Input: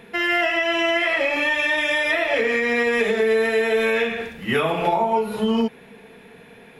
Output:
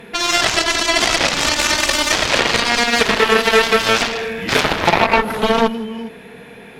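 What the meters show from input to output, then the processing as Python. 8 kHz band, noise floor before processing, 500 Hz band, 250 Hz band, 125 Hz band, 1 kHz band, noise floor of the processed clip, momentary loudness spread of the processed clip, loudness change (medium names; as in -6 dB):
+22.0 dB, -47 dBFS, +2.0 dB, +3.0 dB, +7.5 dB, +7.5 dB, -38 dBFS, 6 LU, +5.5 dB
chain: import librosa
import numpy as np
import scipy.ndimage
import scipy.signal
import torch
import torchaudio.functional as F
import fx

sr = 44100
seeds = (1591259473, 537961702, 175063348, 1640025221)

y = fx.echo_multitap(x, sr, ms=(163, 408), db=(-10.5, -14.0))
y = fx.cheby_harmonics(y, sr, harmonics=(7,), levels_db=(-10,), full_scale_db=-7.0)
y = y * 10.0 ** (5.5 / 20.0)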